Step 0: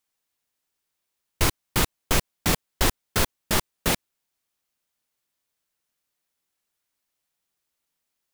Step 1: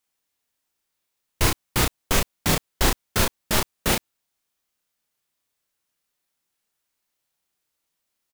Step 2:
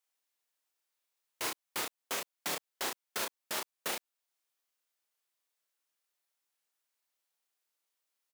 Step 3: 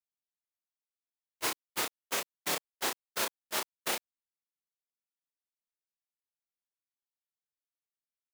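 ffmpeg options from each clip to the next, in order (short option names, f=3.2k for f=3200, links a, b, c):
-filter_complex "[0:a]asplit=2[a][b];[b]adelay=32,volume=-3dB[c];[a][c]amix=inputs=2:normalize=0"
-af "highpass=420,alimiter=limit=-18dB:level=0:latency=1:release=439,volume=-6dB"
-af "agate=range=-25dB:threshold=-36dB:ratio=16:detection=peak,volume=4dB"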